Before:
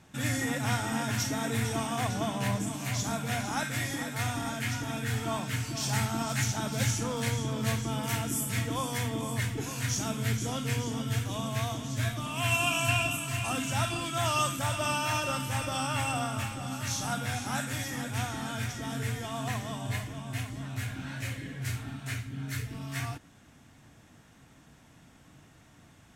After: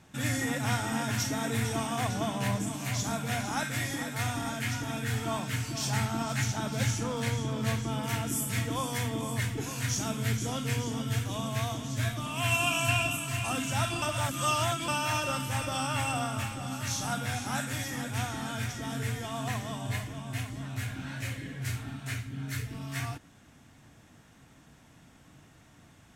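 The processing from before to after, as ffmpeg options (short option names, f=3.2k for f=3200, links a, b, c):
-filter_complex "[0:a]asettb=1/sr,asplit=3[a][b][c];[a]atrim=end=5.894[d];[b]atrim=start=5.89:end=8.27,asetpts=PTS-STARTPTS,afade=t=in:d=0.004:c=qsin,afade=t=out:st=2.376:d=0.004:c=qsin,highshelf=f=5.6k:g=-5[e];[c]atrim=start=8.266[f];[d][e]acrossfade=d=0.004:c1=hsin:c2=qsin[g];[g][f]acrossfade=d=0.004:c1=qsin:c2=hsin,asplit=3[h][i][j];[h]atrim=end=14.022[k];[i]atrim=start=14.018:end=14.882,asetpts=PTS-STARTPTS,areverse[l];[j]atrim=start=14.878[m];[k][l]acrossfade=d=0.004:c1=hsin:c2=hsin[n];[n][m]acrossfade=d=0.004:c1=hsin:c2=hsin"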